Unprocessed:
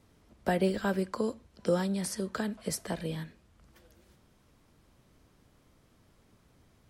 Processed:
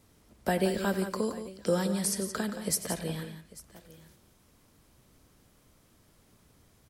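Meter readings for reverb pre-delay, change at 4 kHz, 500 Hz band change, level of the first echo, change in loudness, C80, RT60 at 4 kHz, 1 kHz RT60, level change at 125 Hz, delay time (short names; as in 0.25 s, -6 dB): none, +3.5 dB, +0.5 dB, -15.0 dB, +1.5 dB, none, none, none, +0.5 dB, 92 ms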